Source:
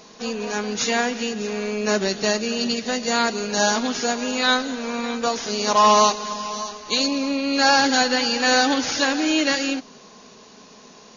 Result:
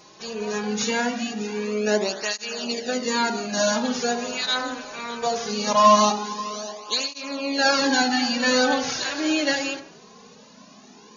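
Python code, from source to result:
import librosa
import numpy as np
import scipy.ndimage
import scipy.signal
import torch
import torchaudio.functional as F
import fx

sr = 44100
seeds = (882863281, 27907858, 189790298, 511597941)

p1 = x + fx.echo_wet_lowpass(x, sr, ms=71, feedback_pct=48, hz=1400.0, wet_db=-7.0, dry=0)
y = fx.flanger_cancel(p1, sr, hz=0.21, depth_ms=4.5)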